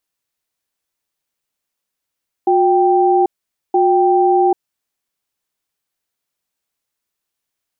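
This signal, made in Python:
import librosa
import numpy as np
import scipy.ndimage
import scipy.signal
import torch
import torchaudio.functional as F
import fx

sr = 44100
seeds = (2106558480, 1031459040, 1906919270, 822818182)

y = fx.cadence(sr, length_s=2.06, low_hz=361.0, high_hz=784.0, on_s=0.79, off_s=0.48, level_db=-12.5)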